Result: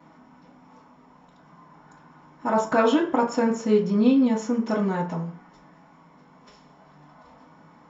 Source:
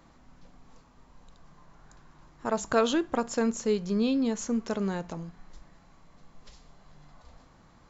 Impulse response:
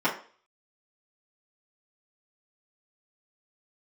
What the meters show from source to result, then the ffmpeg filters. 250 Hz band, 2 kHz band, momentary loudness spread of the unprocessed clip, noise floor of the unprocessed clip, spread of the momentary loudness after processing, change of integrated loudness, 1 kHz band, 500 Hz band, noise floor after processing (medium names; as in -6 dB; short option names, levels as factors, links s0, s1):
+6.5 dB, +5.0 dB, 12 LU, -58 dBFS, 11 LU, +6.0 dB, +8.0 dB, +5.5 dB, -54 dBFS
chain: -filter_complex "[0:a]highpass=49[s0];[1:a]atrim=start_sample=2205[s1];[s0][s1]afir=irnorm=-1:irlink=0,volume=0.422"